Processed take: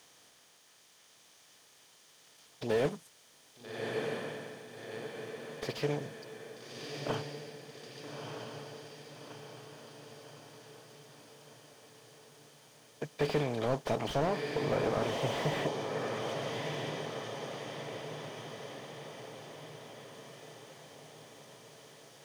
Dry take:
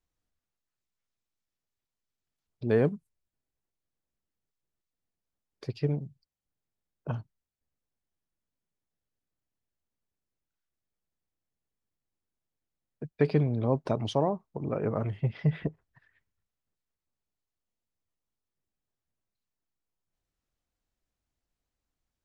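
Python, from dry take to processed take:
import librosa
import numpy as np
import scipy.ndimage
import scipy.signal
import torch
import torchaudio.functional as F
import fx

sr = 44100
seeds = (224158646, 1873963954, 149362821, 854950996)

p1 = fx.bin_compress(x, sr, power=0.6)
p2 = fx.tilt_eq(p1, sr, slope=4.5)
p3 = p2 + fx.echo_diffused(p2, sr, ms=1270, feedback_pct=57, wet_db=-5.0, dry=0)
y = fx.slew_limit(p3, sr, full_power_hz=34.0)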